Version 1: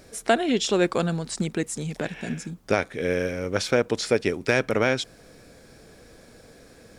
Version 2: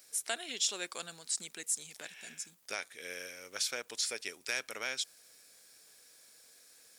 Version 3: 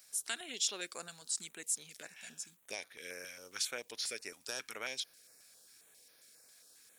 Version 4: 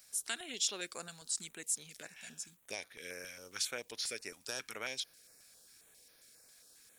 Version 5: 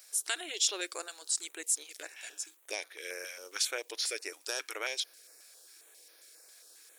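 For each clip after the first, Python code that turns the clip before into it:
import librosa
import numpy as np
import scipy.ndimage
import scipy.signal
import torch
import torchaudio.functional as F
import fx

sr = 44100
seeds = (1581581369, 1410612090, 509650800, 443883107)

y1 = np.diff(x, prepend=0.0)
y1 = fx.dmg_crackle(y1, sr, seeds[0], per_s=110.0, level_db=-54.0)
y2 = fx.filter_held_notch(y1, sr, hz=7.4, low_hz=380.0, high_hz=7700.0)
y2 = F.gain(torch.from_numpy(y2), -1.5).numpy()
y3 = fx.low_shelf(y2, sr, hz=140.0, db=9.5)
y4 = fx.brickwall_highpass(y3, sr, low_hz=290.0)
y4 = F.gain(torch.from_numpy(y4), 5.0).numpy()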